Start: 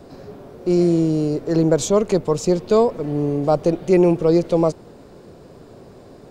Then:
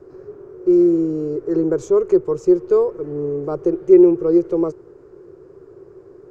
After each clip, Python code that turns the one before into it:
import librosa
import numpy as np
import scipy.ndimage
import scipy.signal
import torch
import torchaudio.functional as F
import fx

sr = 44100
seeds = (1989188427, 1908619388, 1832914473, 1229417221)

y = fx.curve_eq(x, sr, hz=(140.0, 240.0, 370.0, 660.0, 1300.0, 3800.0, 6300.0, 9000.0), db=(0, -12, 15, -7, 4, -16, -6, -13))
y = F.gain(torch.from_numpy(y), -7.0).numpy()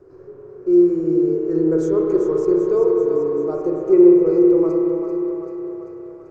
y = fx.echo_thinned(x, sr, ms=389, feedback_pct=65, hz=310.0, wet_db=-8.0)
y = fx.rev_spring(y, sr, rt60_s=3.5, pass_ms=(31, 51), chirp_ms=65, drr_db=-1.5)
y = F.gain(torch.from_numpy(y), -5.0).numpy()